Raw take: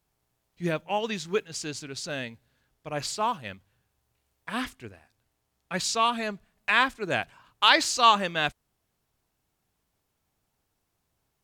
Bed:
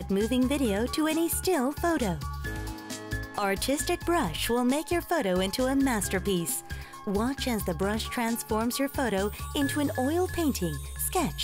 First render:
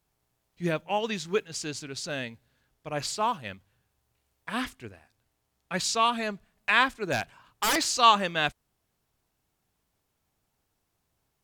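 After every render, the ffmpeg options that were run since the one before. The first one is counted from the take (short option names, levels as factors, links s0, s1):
-filter_complex "[0:a]asettb=1/sr,asplit=3[s0][s1][s2];[s0]atrim=end=6.954[s3];[s1]atrim=start=6.95:end=7.86,asetpts=PTS-STARTPTS,afade=t=in:d=0.004:c=qsin,afade=t=out:st=0.906:d=0.004:c=qsin,aeval=exprs='0.112*(abs(mod(val(0)/0.112+3,4)-2)-1)':c=same[s4];[s2]atrim=start=7.856[s5];[s3][s4]acrossfade=d=0.004:c1=hsin:c2=qsin[s6];[s6][s5]acrossfade=d=0.004:c1=qsin:c2=hsin"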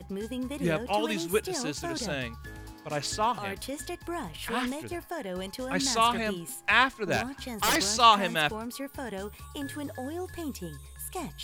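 -filter_complex "[1:a]volume=0.355[s0];[0:a][s0]amix=inputs=2:normalize=0"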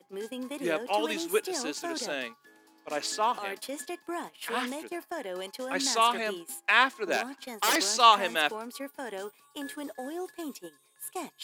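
-af "highpass=f=270:w=0.5412,highpass=f=270:w=1.3066,agate=range=0.282:threshold=0.01:ratio=16:detection=peak"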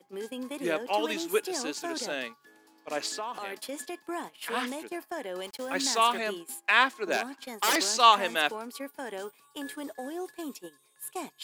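-filter_complex "[0:a]asettb=1/sr,asplit=3[s0][s1][s2];[s0]atrim=end=0.754[s3];[s1]atrim=start=0.75:end=1.36,asetpts=PTS-STARTPTS,afade=t=in:d=0.004:c=qsin,afade=t=out:st=0.606:d=0.004:c=qsin,equalizer=f=9600:w=7.4:g=-9.5[s4];[s2]atrim=start=1.356[s5];[s3][s4]acrossfade=d=0.004:c1=hsin:c2=qsin[s6];[s6][s5]acrossfade=d=0.004:c1=qsin:c2=hsin,asettb=1/sr,asplit=3[s7][s8][s9];[s7]atrim=end=3.084[s10];[s8]atrim=start=3.08:end=3.95,asetpts=PTS-STARTPTS,afade=t=in:d=0.004:c=qsin,afade=t=out:st=0.866:d=0.004:c=qsin,acompressor=threshold=0.0282:ratio=6:attack=3.2:release=140:knee=1:detection=peak[s11];[s9]atrim=start=3.946[s12];[s10][s11]acrossfade=d=0.004:c1=hsin:c2=qsin[s13];[s13][s12]acrossfade=d=0.004:c1=qsin:c2=hsin,asettb=1/sr,asplit=3[s14][s15][s16];[s14]atrim=end=5.444[s17];[s15]atrim=start=5.44:end=6.18,asetpts=PTS-STARTPTS,afade=t=in:d=0.004:c=qsin,afade=t=out:st=0.736:d=0.004:c=qsin,acrusher=bits=7:mix=0:aa=0.5[s18];[s16]atrim=start=6.176[s19];[s17][s18]acrossfade=d=0.004:c1=hsin:c2=qsin[s20];[s20][s19]acrossfade=d=0.004:c1=qsin:c2=hsin"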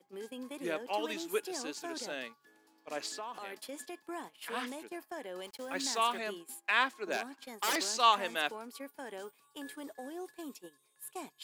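-af "volume=0.473"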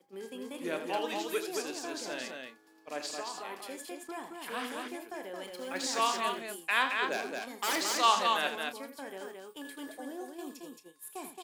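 -filter_complex "[0:a]asplit=2[s0][s1];[s1]adelay=31,volume=0.266[s2];[s0][s2]amix=inputs=2:normalize=0,aecho=1:1:81.63|221.6:0.316|0.631"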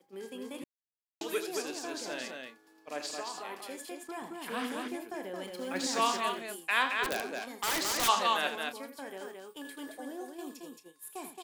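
-filter_complex "[0:a]asettb=1/sr,asplit=3[s0][s1][s2];[s0]atrim=end=4.224[s3];[s1]atrim=start=4.22:end=6.17,asetpts=PTS-STARTPTS,afade=t=in:d=0.004:c=qsin,afade=t=out:st=1.946:d=0.004:c=qsin,equalizer=f=180:w=0.76:g=7[s4];[s2]atrim=start=6.166[s5];[s3][s4]acrossfade=d=0.004:c1=hsin:c2=qsin[s6];[s6][s5]acrossfade=d=0.004:c1=qsin:c2=hsin,asplit=3[s7][s8][s9];[s7]afade=t=out:st=7.03:d=0.02[s10];[s8]aeval=exprs='(mod(14.1*val(0)+1,2)-1)/14.1':c=same,afade=t=in:st=7.03:d=0.02,afade=t=out:st=8.07:d=0.02[s11];[s9]afade=t=in:st=8.07:d=0.02[s12];[s10][s11][s12]amix=inputs=3:normalize=0,asplit=3[s13][s14][s15];[s13]atrim=end=0.64,asetpts=PTS-STARTPTS,afade=t=out:st=0.636:d=0.004:c=hsin[s16];[s14]atrim=start=0.64:end=1.21,asetpts=PTS-STARTPTS,volume=0[s17];[s15]atrim=start=1.21,asetpts=PTS-STARTPTS,afade=t=in:d=0.004:c=hsin[s18];[s16][s17][s18]concat=n=3:v=0:a=1"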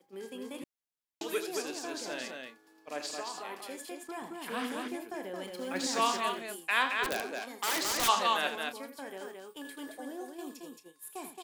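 -filter_complex "[0:a]asettb=1/sr,asplit=3[s0][s1][s2];[s0]atrim=end=7.244[s3];[s1]atrim=start=7.24:end=7.85,asetpts=PTS-STARTPTS,afade=t=in:d=0.004:c=qsin,afade=t=out:st=0.606:d=0.004:c=qsin,highpass=210[s4];[s2]atrim=start=7.846[s5];[s3][s4]acrossfade=d=0.004:c1=hsin:c2=qsin[s6];[s6][s5]acrossfade=d=0.004:c1=qsin:c2=hsin"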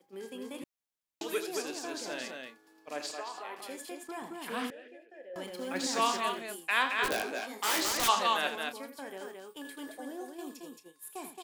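-filter_complex "[0:a]asplit=3[s0][s1][s2];[s0]afade=t=out:st=3.11:d=0.02[s3];[s1]bass=f=250:g=-14,treble=f=4000:g=-8,afade=t=in:st=3.11:d=0.02,afade=t=out:st=3.57:d=0.02[s4];[s2]afade=t=in:st=3.57:d=0.02[s5];[s3][s4][s5]amix=inputs=3:normalize=0,asettb=1/sr,asplit=3[s6][s7][s8];[s6]atrim=end=4.704[s9];[s7]atrim=start=4.7:end=5.36,asetpts=PTS-STARTPTS,afade=t=in:d=0.004:c=qsin,afade=t=out:st=0.656:d=0.004:c=qsin,asplit=3[s10][s11][s12];[s10]bandpass=f=530:t=q:w=8,volume=1[s13];[s11]bandpass=f=1840:t=q:w=8,volume=0.501[s14];[s12]bandpass=f=2480:t=q:w=8,volume=0.355[s15];[s13][s14][s15]amix=inputs=3:normalize=0[s16];[s8]atrim=start=5.356[s17];[s9][s16]acrossfade=d=0.004:c1=hsin:c2=qsin[s18];[s18][s17]acrossfade=d=0.004:c1=qsin:c2=hsin,asettb=1/sr,asplit=3[s19][s20][s21];[s19]atrim=end=6.964[s22];[s20]atrim=start=6.96:end=7.89,asetpts=PTS-STARTPTS,afade=t=in:d=0.004:c=qsin,afade=t=out:st=0.926:d=0.004:c=qsin,asplit=2[s23][s24];[s24]adelay=19,volume=0.708[s25];[s23][s25]amix=inputs=2:normalize=0,atrim=end_sample=41013[s26];[s21]atrim=start=7.886[s27];[s22][s26]acrossfade=d=0.004:c1=hsin:c2=qsin[s28];[s28][s27]acrossfade=d=0.004:c1=qsin:c2=hsin"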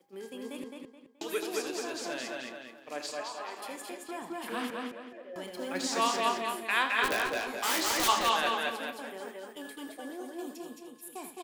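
-filter_complex "[0:a]asplit=2[s0][s1];[s1]adelay=213,lowpass=f=4700:p=1,volume=0.708,asplit=2[s2][s3];[s3]adelay=213,lowpass=f=4700:p=1,volume=0.33,asplit=2[s4][s5];[s5]adelay=213,lowpass=f=4700:p=1,volume=0.33,asplit=2[s6][s7];[s7]adelay=213,lowpass=f=4700:p=1,volume=0.33[s8];[s0][s2][s4][s6][s8]amix=inputs=5:normalize=0"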